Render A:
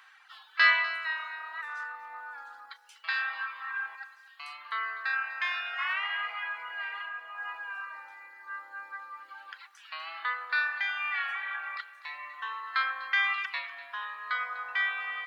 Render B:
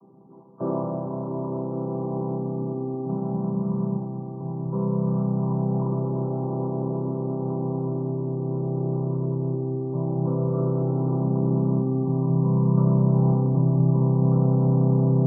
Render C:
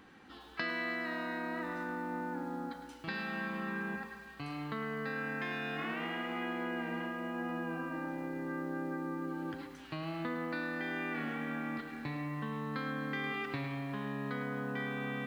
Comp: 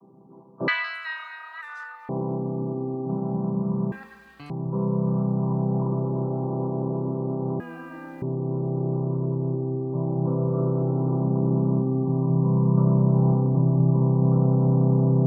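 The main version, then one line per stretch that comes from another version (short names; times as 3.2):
B
0.68–2.09 from A
3.92–4.5 from C
7.6–8.22 from C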